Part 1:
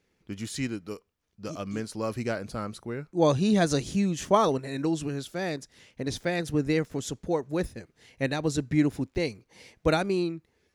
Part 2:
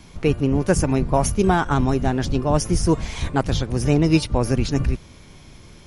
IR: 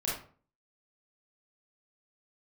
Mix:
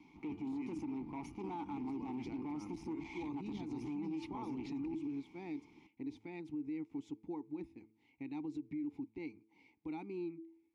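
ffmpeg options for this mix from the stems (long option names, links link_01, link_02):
-filter_complex "[0:a]equalizer=frequency=72:width_type=o:width=1.8:gain=8,alimiter=limit=-19.5dB:level=0:latency=1:release=120,volume=-2dB[link_01];[1:a]equalizer=frequency=5600:width=1.5:gain=3.5,alimiter=limit=-13.5dB:level=0:latency=1:release=105,asoftclip=type=hard:threshold=-22dB,volume=-1.5dB[link_02];[link_01][link_02]amix=inputs=2:normalize=0,asplit=3[link_03][link_04][link_05];[link_03]bandpass=frequency=300:width_type=q:width=8,volume=0dB[link_06];[link_04]bandpass=frequency=870:width_type=q:width=8,volume=-6dB[link_07];[link_05]bandpass=frequency=2240:width_type=q:width=8,volume=-9dB[link_08];[link_06][link_07][link_08]amix=inputs=3:normalize=0,bandreject=frequency=109.8:width_type=h:width=4,bandreject=frequency=219.6:width_type=h:width=4,bandreject=frequency=329.4:width_type=h:width=4,bandreject=frequency=439.2:width_type=h:width=4,alimiter=level_in=10.5dB:limit=-24dB:level=0:latency=1:release=56,volume=-10.5dB"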